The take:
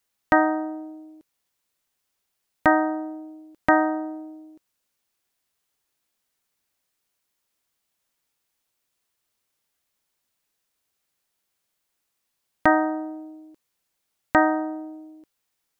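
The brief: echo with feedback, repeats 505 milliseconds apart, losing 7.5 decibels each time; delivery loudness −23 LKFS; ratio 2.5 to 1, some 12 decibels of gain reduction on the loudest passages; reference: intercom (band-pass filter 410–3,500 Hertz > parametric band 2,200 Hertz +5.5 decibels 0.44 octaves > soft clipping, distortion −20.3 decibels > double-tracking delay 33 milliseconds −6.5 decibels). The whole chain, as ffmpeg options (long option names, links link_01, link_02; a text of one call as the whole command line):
ffmpeg -i in.wav -filter_complex "[0:a]acompressor=threshold=-31dB:ratio=2.5,highpass=410,lowpass=3500,equalizer=frequency=2200:width_type=o:width=0.44:gain=5.5,aecho=1:1:505|1010|1515|2020|2525:0.422|0.177|0.0744|0.0312|0.0131,asoftclip=threshold=-15.5dB,asplit=2[link_01][link_02];[link_02]adelay=33,volume=-6.5dB[link_03];[link_01][link_03]amix=inputs=2:normalize=0,volume=13.5dB" out.wav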